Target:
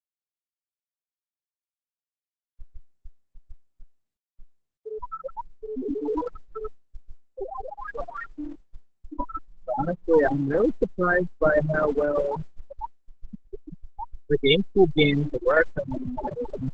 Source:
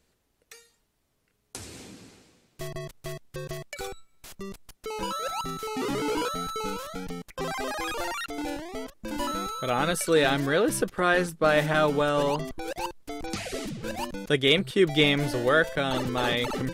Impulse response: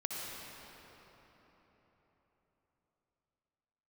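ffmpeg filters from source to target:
-af "aeval=exprs='if(lt(val(0),0),0.251*val(0),val(0))':channel_layout=same,afftfilt=real='re*gte(hypot(re,im),0.158)':imag='im*gte(hypot(re,im),0.158)':win_size=1024:overlap=0.75,volume=8dB" -ar 48000 -c:a libopus -b:a 12k

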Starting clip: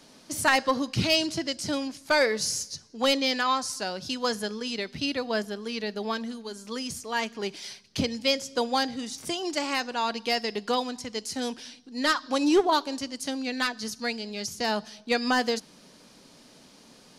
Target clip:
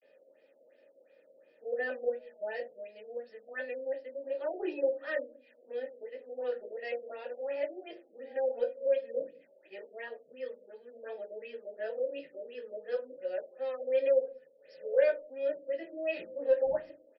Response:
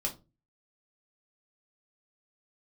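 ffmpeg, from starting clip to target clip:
-filter_complex "[0:a]areverse,asplit=3[link_01][link_02][link_03];[link_01]bandpass=frequency=530:width_type=q:width=8,volume=0dB[link_04];[link_02]bandpass=frequency=1840:width_type=q:width=8,volume=-6dB[link_05];[link_03]bandpass=frequency=2480:width_type=q:width=8,volume=-9dB[link_06];[link_04][link_05][link_06]amix=inputs=3:normalize=0,acrossover=split=290 2000:gain=0.0708 1 0.126[link_07][link_08][link_09];[link_07][link_08][link_09]amix=inputs=3:normalize=0,aresample=16000,asoftclip=type=tanh:threshold=-23dB,aresample=44100,crystalizer=i=3:c=0,acrossover=split=450|890[link_10][link_11][link_12];[link_10]aecho=1:1:188:0.168[link_13];[link_12]aeval=exprs='(mod(26.6*val(0)+1,2)-1)/26.6':channel_layout=same[link_14];[link_13][link_11][link_14]amix=inputs=3:normalize=0[link_15];[1:a]atrim=start_sample=2205[link_16];[link_15][link_16]afir=irnorm=-1:irlink=0,afftfilt=real='re*lt(b*sr/1024,730*pow(5700/730,0.5+0.5*sin(2*PI*2.8*pts/sr)))':imag='im*lt(b*sr/1024,730*pow(5700/730,0.5+0.5*sin(2*PI*2.8*pts/sr)))':win_size=1024:overlap=0.75"

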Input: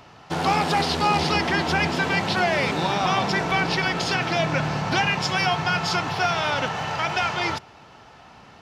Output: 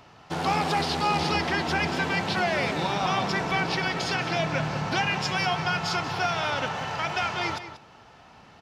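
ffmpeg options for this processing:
ffmpeg -i in.wav -filter_complex "[0:a]asplit=2[link_01][link_02];[link_02]adelay=186.6,volume=-11dB,highshelf=frequency=4000:gain=-4.2[link_03];[link_01][link_03]amix=inputs=2:normalize=0,volume=-4dB" out.wav

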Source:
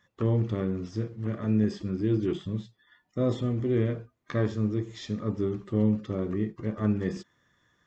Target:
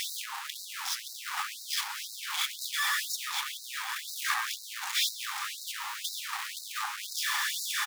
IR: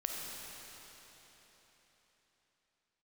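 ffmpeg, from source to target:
-filter_complex "[0:a]aeval=exprs='val(0)+0.5*0.0447*sgn(val(0))':channel_layout=same,asplit=2[link_01][link_02];[link_02]asetrate=29433,aresample=44100,atempo=1.49831,volume=-5dB[link_03];[link_01][link_03]amix=inputs=2:normalize=0,aecho=1:1:1118:0.266,asplit=2[link_04][link_05];[1:a]atrim=start_sample=2205[link_06];[link_05][link_06]afir=irnorm=-1:irlink=0,volume=-10.5dB[link_07];[link_04][link_07]amix=inputs=2:normalize=0,afftfilt=real='re*gte(b*sr/1024,730*pow(3800/730,0.5+0.5*sin(2*PI*2*pts/sr)))':imag='im*gte(b*sr/1024,730*pow(3800/730,0.5+0.5*sin(2*PI*2*pts/sr)))':win_size=1024:overlap=0.75,volume=1.5dB"

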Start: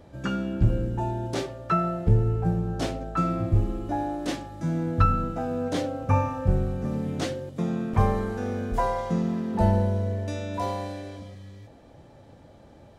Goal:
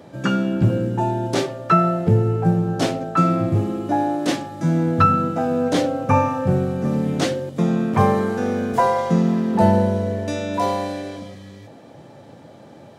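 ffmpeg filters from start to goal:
ffmpeg -i in.wav -af "highpass=frequency=120:width=0.5412,highpass=frequency=120:width=1.3066,volume=8.5dB" out.wav

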